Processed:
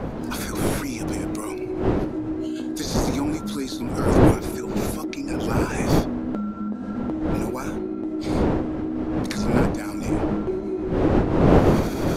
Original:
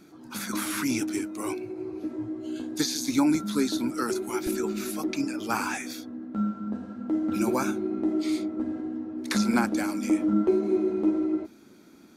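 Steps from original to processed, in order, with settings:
camcorder AGC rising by 77 dB per second
wind on the microphone 400 Hz −20 dBFS
level −4 dB

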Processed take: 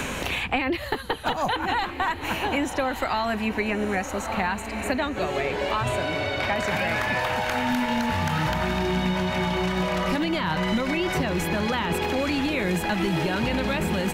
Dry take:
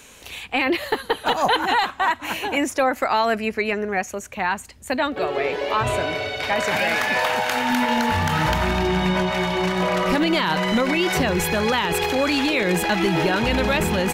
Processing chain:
bass and treble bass +5 dB, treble −2 dB
notch filter 450 Hz, Q 12
on a send: feedback delay with all-pass diffusion 1,212 ms, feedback 42%, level −11.5 dB
on the sum: multiband upward and downward compressor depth 100%
level −6 dB

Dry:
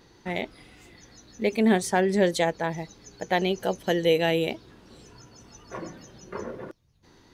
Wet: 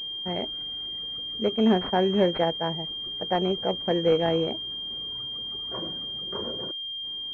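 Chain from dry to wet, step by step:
0:01.48–0:02.84: downward expander −29 dBFS
switching amplifier with a slow clock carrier 3,200 Hz

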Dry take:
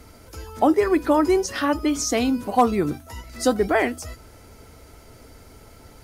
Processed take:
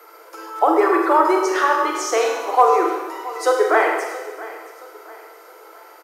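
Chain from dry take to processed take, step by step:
parametric band 1,000 Hz +9 dB 1.9 octaves
in parallel at −3 dB: brickwall limiter −7 dBFS, peak gain reduction 9 dB
on the sum: steady tone 13,000 Hz −44 dBFS
Chebyshev high-pass with heavy ripple 320 Hz, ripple 6 dB
on a send: repeating echo 673 ms, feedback 37%, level −17.5 dB
on the sum: four-comb reverb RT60 1.2 s, combs from 33 ms, DRR 1 dB
level −3 dB

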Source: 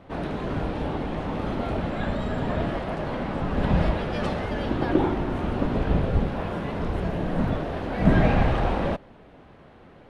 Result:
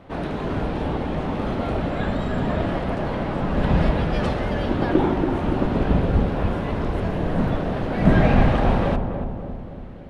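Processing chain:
feedback echo with a low-pass in the loop 284 ms, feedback 61%, low-pass 930 Hz, level −6 dB
level +2.5 dB

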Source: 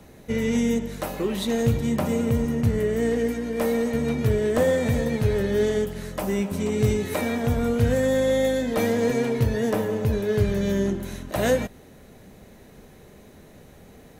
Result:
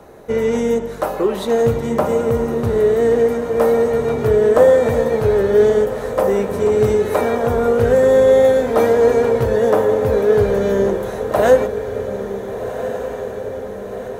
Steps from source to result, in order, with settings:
flat-topped bell 740 Hz +11 dB 2.4 octaves
on a send: feedback delay with all-pass diffusion 1,483 ms, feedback 60%, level −10 dB

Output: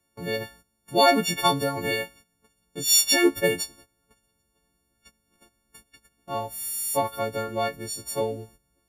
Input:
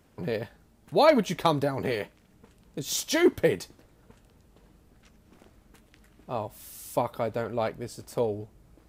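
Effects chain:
every partial snapped to a pitch grid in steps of 4 semitones
noise gate −50 dBFS, range −15 dB

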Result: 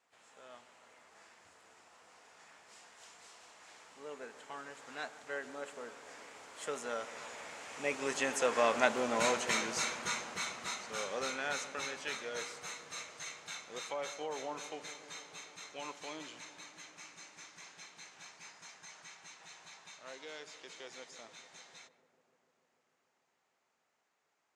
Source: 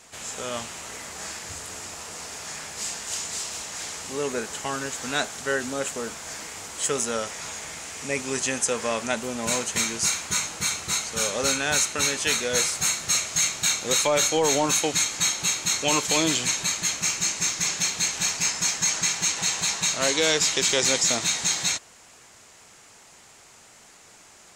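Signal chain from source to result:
source passing by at 0:08.98, 11 m/s, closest 9.1 metres
resonant band-pass 1,000 Hz, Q 0.52
pitch-shifted copies added +5 semitones −16 dB
on a send: feedback echo with a low-pass in the loop 148 ms, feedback 84%, low-pass 1,500 Hz, level −15 dB

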